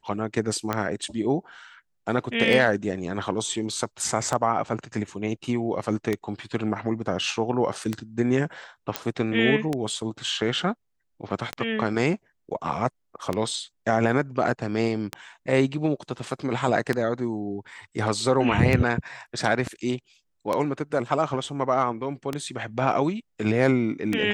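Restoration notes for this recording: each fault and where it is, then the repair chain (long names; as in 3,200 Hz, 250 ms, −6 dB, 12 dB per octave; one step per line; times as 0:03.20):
scratch tick 33 1/3 rpm −11 dBFS
0:08.96: click −8 dBFS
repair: click removal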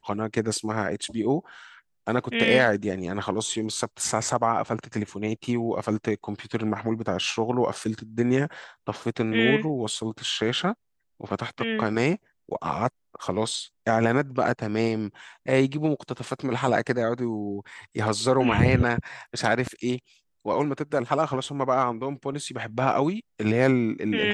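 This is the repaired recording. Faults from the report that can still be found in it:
none of them is left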